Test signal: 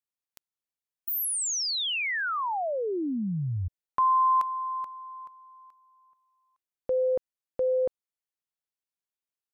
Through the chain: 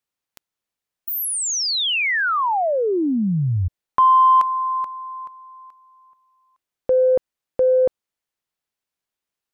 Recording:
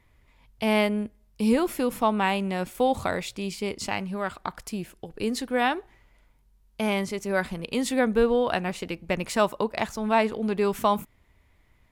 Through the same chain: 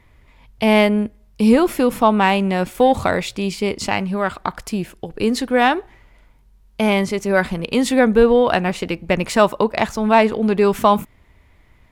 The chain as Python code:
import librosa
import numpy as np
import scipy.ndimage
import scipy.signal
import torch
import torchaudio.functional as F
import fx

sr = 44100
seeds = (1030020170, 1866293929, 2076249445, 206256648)

p1 = fx.high_shelf(x, sr, hz=5400.0, db=-5.5)
p2 = 10.0 ** (-18.5 / 20.0) * np.tanh(p1 / 10.0 ** (-18.5 / 20.0))
p3 = p1 + (p2 * 10.0 ** (-9.0 / 20.0))
y = p3 * 10.0 ** (7.0 / 20.0)